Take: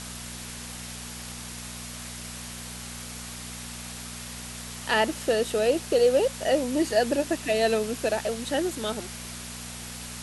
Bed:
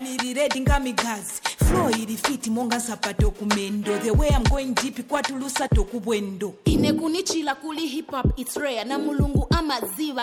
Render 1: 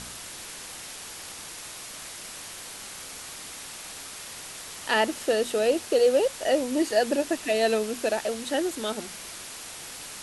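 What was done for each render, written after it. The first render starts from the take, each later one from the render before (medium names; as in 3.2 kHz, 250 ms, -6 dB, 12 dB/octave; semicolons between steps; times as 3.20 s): de-hum 60 Hz, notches 4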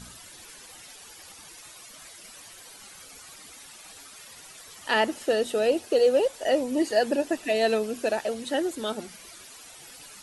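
noise reduction 12 dB, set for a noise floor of -41 dBFS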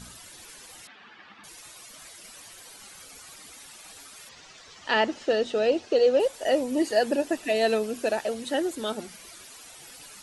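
0.87–1.44 s: cabinet simulation 160–3300 Hz, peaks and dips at 210 Hz +10 dB, 510 Hz -7 dB, 1.2 kHz +5 dB, 1.7 kHz +6 dB; 4.29–6.20 s: low-pass 6.3 kHz 24 dB/octave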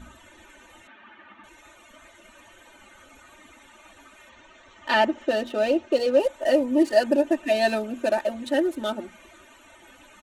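local Wiener filter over 9 samples; comb 3.3 ms, depth 93%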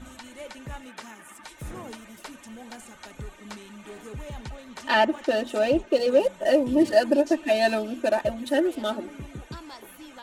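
add bed -18.5 dB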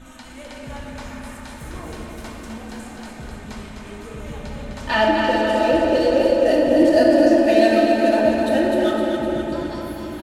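on a send: feedback delay 256 ms, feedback 59%, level -5.5 dB; on the sum: simulated room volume 210 m³, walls hard, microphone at 0.63 m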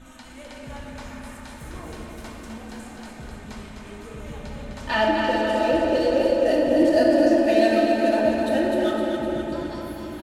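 trim -3.5 dB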